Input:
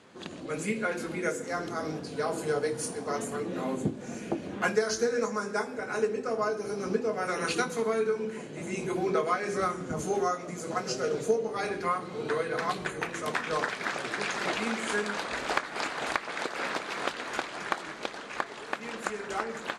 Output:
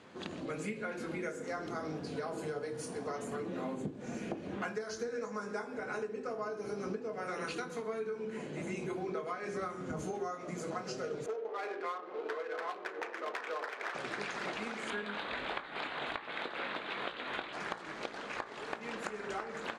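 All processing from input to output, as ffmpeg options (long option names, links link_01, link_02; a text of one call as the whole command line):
ffmpeg -i in.wav -filter_complex "[0:a]asettb=1/sr,asplit=3[link_01][link_02][link_03];[link_01]atrim=end=11.264[link_04];[link_02]atrim=start=11.26:end=13.95,asetpts=PTS-STARTPTS,afade=type=in:duration=0.004:curve=qsin,afade=type=out:start_time=2.686:duration=0.004:curve=qsin,adynamicsmooth=sensitivity=6.5:basefreq=950,asoftclip=type=hard:threshold=-22dB,highpass=frequency=370:width=0.5412,highpass=frequency=370:width=1.3066[link_05];[link_03]atrim=start=13.946[link_06];[link_04][link_05]acrossfade=duration=0.004:curve1=hsin:curve2=qsin[link_07];[link_07][link_06]acrossfade=duration=0.004:curve1=qsin:curve2=hsin,asettb=1/sr,asplit=3[link_08][link_09][link_10];[link_08]atrim=end=14.904[link_11];[link_09]atrim=start=14.9:end=17.53,asetpts=PTS-STARTPTS,afade=type=in:duration=0.004:curve=qsin,afade=type=out:start_time=2.626:duration=0.004:curve=qsin,highshelf=frequency=4500:width_type=q:width=3:gain=-7,asplit=2[link_12][link_13];[link_13]adelay=20,volume=-10.5dB[link_14];[link_12][link_14]amix=inputs=2:normalize=0,atrim=end_sample=115983[link_15];[link_10]atrim=start=17.526[link_16];[link_11][link_15]acrossfade=duration=0.004:curve1=hsin:curve2=qsin[link_17];[link_17][link_16]acrossfade=duration=0.004:curve1=qsin:curve2=hsin,acompressor=threshold=-36dB:ratio=6,highshelf=frequency=6300:gain=-10.5,bandreject=frequency=56.64:width_type=h:width=4,bandreject=frequency=113.28:width_type=h:width=4,bandreject=frequency=169.92:width_type=h:width=4,bandreject=frequency=226.56:width_type=h:width=4,bandreject=frequency=283.2:width_type=h:width=4,bandreject=frequency=339.84:width_type=h:width=4,bandreject=frequency=396.48:width_type=h:width=4,bandreject=frequency=453.12:width_type=h:width=4,bandreject=frequency=509.76:width_type=h:width=4,bandreject=frequency=566.4:width_type=h:width=4,bandreject=frequency=623.04:width_type=h:width=4,bandreject=frequency=679.68:width_type=h:width=4,bandreject=frequency=736.32:width_type=h:width=4,bandreject=frequency=792.96:width_type=h:width=4,bandreject=frequency=849.6:width_type=h:width=4,bandreject=frequency=906.24:width_type=h:width=4,bandreject=frequency=962.88:width_type=h:width=4,bandreject=frequency=1019.52:width_type=h:width=4,bandreject=frequency=1076.16:width_type=h:width=4,bandreject=frequency=1132.8:width_type=h:width=4,bandreject=frequency=1189.44:width_type=h:width=4,bandreject=frequency=1246.08:width_type=h:width=4,bandreject=frequency=1302.72:width_type=h:width=4,bandreject=frequency=1359.36:width_type=h:width=4,bandreject=frequency=1416:width_type=h:width=4,bandreject=frequency=1472.64:width_type=h:width=4,bandreject=frequency=1529.28:width_type=h:width=4,bandreject=frequency=1585.92:width_type=h:width=4,bandreject=frequency=1642.56:width_type=h:width=4,bandreject=frequency=1699.2:width_type=h:width=4,bandreject=frequency=1755.84:width_type=h:width=4,bandreject=frequency=1812.48:width_type=h:width=4,volume=1dB" out.wav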